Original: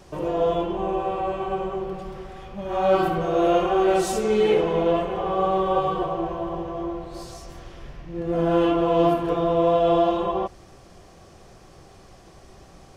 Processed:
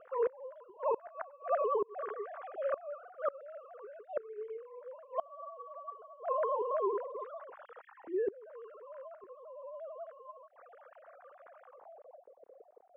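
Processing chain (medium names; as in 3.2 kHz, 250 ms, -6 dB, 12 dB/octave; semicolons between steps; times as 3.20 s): formants replaced by sine waves; inverted gate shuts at -22 dBFS, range -27 dB; low-pass sweep 1.4 kHz -> 450 Hz, 11.59–12.28 s; trim -2 dB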